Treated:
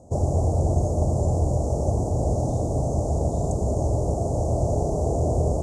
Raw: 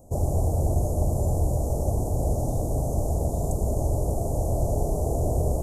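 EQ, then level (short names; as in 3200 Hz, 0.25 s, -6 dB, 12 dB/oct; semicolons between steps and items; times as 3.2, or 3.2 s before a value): HPF 63 Hz; LPF 7500 Hz 24 dB/oct; +3.5 dB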